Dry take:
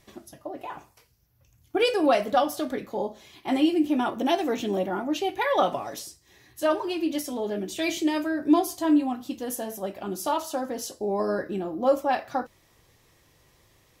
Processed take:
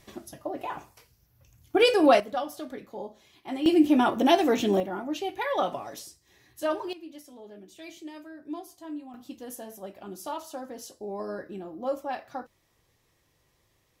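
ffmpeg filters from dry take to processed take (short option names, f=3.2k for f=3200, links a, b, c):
-af "asetnsamples=n=441:p=0,asendcmd='2.2 volume volume -8.5dB;3.66 volume volume 3.5dB;4.8 volume volume -4.5dB;6.93 volume volume -17dB;9.14 volume volume -8.5dB',volume=2.5dB"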